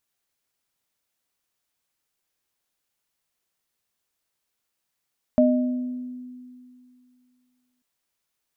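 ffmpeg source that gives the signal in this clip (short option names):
-f lavfi -i "aevalsrc='0.178*pow(10,-3*t/2.47)*sin(2*PI*250*t)+0.188*pow(10,-3*t/0.81)*sin(2*PI*616*t)':d=2.44:s=44100"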